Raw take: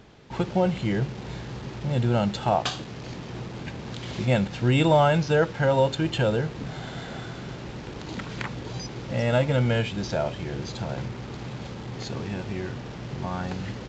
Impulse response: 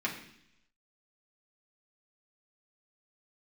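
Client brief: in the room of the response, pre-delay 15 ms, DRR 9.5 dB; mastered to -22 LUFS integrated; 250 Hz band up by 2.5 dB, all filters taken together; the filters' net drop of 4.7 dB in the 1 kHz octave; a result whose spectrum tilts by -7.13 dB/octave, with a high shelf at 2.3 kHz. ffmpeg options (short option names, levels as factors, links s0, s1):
-filter_complex "[0:a]equalizer=f=250:t=o:g=4,equalizer=f=1000:t=o:g=-5.5,highshelf=f=2300:g=-8.5,asplit=2[s0][s1];[1:a]atrim=start_sample=2205,adelay=15[s2];[s1][s2]afir=irnorm=-1:irlink=0,volume=0.158[s3];[s0][s3]amix=inputs=2:normalize=0,volume=1.68"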